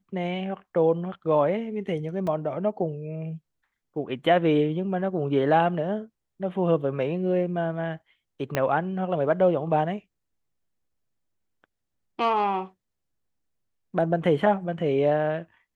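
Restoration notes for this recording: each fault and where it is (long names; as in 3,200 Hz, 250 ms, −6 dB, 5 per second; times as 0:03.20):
0:02.27: drop-out 3.2 ms
0:08.55: click −10 dBFS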